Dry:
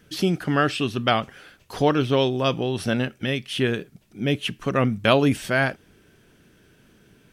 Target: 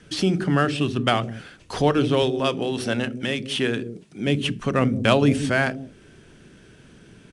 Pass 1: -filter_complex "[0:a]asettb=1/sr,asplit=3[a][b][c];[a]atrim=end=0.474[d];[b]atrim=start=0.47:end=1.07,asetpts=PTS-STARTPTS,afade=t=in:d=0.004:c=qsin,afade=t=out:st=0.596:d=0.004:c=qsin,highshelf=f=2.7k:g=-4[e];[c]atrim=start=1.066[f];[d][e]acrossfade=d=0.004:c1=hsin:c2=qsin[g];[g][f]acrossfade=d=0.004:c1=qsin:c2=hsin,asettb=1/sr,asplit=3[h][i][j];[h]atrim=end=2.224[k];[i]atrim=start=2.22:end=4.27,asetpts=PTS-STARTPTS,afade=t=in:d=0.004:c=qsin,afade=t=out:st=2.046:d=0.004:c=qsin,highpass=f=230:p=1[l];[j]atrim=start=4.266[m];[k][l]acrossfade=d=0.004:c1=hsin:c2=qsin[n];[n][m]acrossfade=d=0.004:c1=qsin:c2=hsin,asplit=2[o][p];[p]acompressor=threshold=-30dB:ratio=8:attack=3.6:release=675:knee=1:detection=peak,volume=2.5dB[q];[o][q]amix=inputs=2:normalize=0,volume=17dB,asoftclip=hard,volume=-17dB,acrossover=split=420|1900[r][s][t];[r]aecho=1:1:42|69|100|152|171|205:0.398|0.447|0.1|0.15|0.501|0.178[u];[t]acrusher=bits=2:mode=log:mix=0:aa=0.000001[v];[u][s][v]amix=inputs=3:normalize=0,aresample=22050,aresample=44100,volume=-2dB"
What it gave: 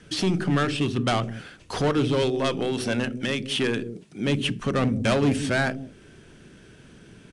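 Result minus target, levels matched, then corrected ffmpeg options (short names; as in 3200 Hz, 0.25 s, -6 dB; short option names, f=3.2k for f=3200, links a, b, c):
overloaded stage: distortion +26 dB
-filter_complex "[0:a]asettb=1/sr,asplit=3[a][b][c];[a]atrim=end=0.474[d];[b]atrim=start=0.47:end=1.07,asetpts=PTS-STARTPTS,afade=t=in:d=0.004:c=qsin,afade=t=out:st=0.596:d=0.004:c=qsin,highshelf=f=2.7k:g=-4[e];[c]atrim=start=1.066[f];[d][e]acrossfade=d=0.004:c1=hsin:c2=qsin[g];[g][f]acrossfade=d=0.004:c1=qsin:c2=hsin,asettb=1/sr,asplit=3[h][i][j];[h]atrim=end=2.224[k];[i]atrim=start=2.22:end=4.27,asetpts=PTS-STARTPTS,afade=t=in:d=0.004:c=qsin,afade=t=out:st=2.046:d=0.004:c=qsin,highpass=f=230:p=1[l];[j]atrim=start=4.266[m];[k][l]acrossfade=d=0.004:c1=hsin:c2=qsin[n];[n][m]acrossfade=d=0.004:c1=qsin:c2=hsin,asplit=2[o][p];[p]acompressor=threshold=-30dB:ratio=8:attack=3.6:release=675:knee=1:detection=peak,volume=2.5dB[q];[o][q]amix=inputs=2:normalize=0,volume=5.5dB,asoftclip=hard,volume=-5.5dB,acrossover=split=420|1900[r][s][t];[r]aecho=1:1:42|69|100|152|171|205:0.398|0.447|0.1|0.15|0.501|0.178[u];[t]acrusher=bits=2:mode=log:mix=0:aa=0.000001[v];[u][s][v]amix=inputs=3:normalize=0,aresample=22050,aresample=44100,volume=-2dB"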